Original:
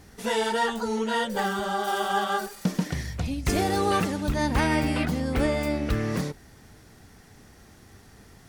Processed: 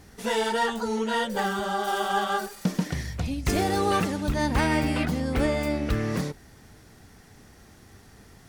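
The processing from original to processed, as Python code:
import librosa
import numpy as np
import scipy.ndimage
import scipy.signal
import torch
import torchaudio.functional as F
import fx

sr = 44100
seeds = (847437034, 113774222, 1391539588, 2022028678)

y = fx.tracing_dist(x, sr, depth_ms=0.023)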